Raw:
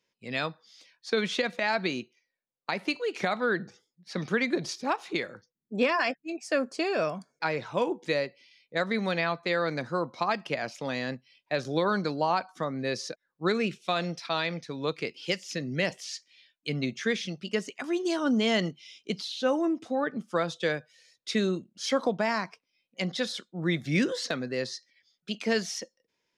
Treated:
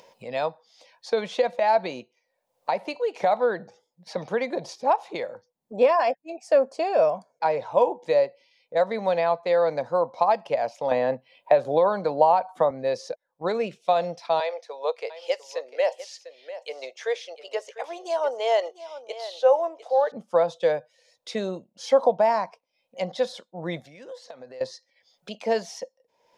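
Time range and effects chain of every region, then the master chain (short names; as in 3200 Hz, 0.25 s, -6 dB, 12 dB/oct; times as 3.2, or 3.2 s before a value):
10.91–12.71 bell 5600 Hz -12 dB 0.57 oct + three-band squash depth 100%
14.4–20.12 steep high-pass 430 Hz + echo 0.699 s -14.5 dB
23.8–24.61 low shelf 450 Hz -7.5 dB + compressor 8:1, threshold -44 dBFS
whole clip: band shelf 690 Hz +15 dB 1.3 oct; upward compressor, threshold -31 dBFS; gain -5 dB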